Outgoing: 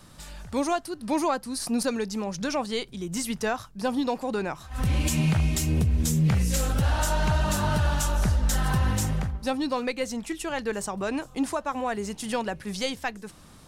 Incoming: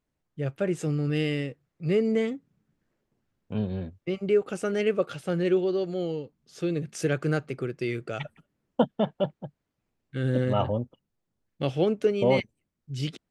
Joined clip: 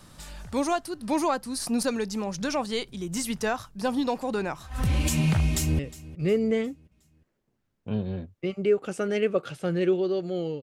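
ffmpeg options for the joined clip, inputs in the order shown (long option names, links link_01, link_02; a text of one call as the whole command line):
ffmpeg -i cue0.wav -i cue1.wav -filter_complex "[0:a]apad=whole_dur=10.62,atrim=end=10.62,atrim=end=5.792[link_01];[1:a]atrim=start=1.428:end=6.26[link_02];[link_01][link_02]acrossfade=duration=0.004:curve1=hsin:curve2=hsin,asplit=2[link_03][link_04];[link_04]afade=type=in:start_time=5.47:duration=0.01,afade=type=out:start_time=5.79:duration=0.01,aecho=0:1:360|720|1080|1440:0.125893|0.0566516|0.0254932|0.011472[link_05];[link_03][link_05]amix=inputs=2:normalize=0" out.wav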